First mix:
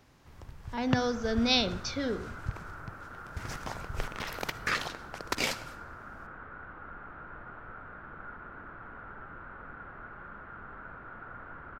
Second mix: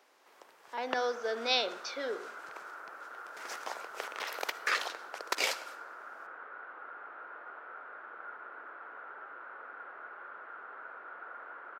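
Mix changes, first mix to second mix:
speech: add treble shelf 5.4 kHz -10.5 dB; master: add high-pass 410 Hz 24 dB/octave

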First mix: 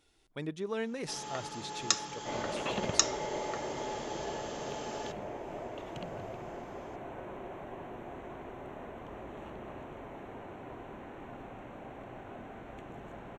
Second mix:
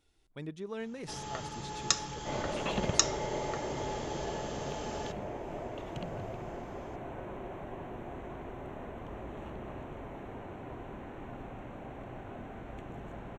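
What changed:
speech -5.5 dB; first sound: remove high-pass 140 Hz; master: add bass shelf 160 Hz +8 dB

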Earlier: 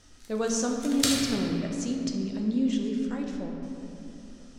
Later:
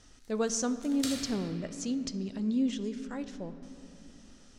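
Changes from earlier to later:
speech: send -11.0 dB; background -10.5 dB

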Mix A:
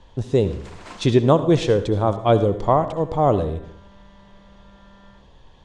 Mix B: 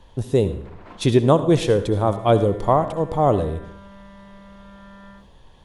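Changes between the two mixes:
first sound: add tape spacing loss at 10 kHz 38 dB; second sound +7.0 dB; master: remove low-pass 7.4 kHz 24 dB/octave

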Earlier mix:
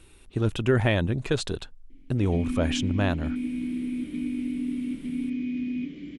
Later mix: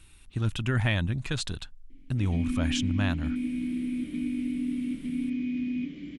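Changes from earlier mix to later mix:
speech: add peaking EQ 480 Hz -10 dB 1.8 oct; master: add peaking EQ 410 Hz -5 dB 0.51 oct

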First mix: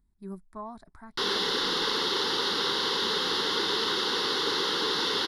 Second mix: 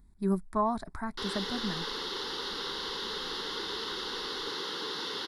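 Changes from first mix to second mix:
speech +11.5 dB; background -8.5 dB

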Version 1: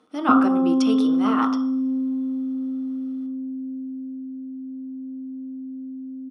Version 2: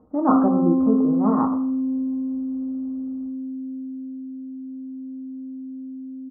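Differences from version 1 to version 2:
speech: remove cabinet simulation 370–9400 Hz, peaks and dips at 560 Hz -8 dB, 850 Hz -5 dB, 1.3 kHz +7 dB, 1.8 kHz -6 dB, 4.3 kHz -5 dB, 7.3 kHz -9 dB; master: add Chebyshev low-pass 1.2 kHz, order 4

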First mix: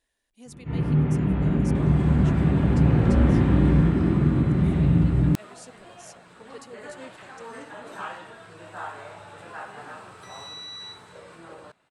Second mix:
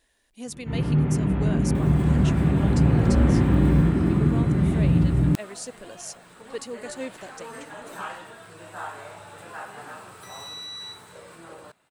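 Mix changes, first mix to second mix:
speech +10.0 dB; second sound: remove distance through air 60 m

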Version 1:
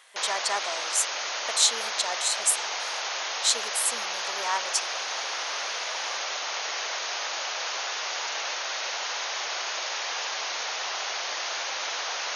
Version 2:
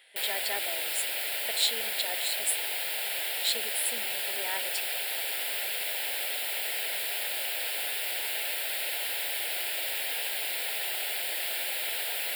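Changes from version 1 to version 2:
background: remove brick-wall FIR low-pass 6.8 kHz; master: add static phaser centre 2.7 kHz, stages 4

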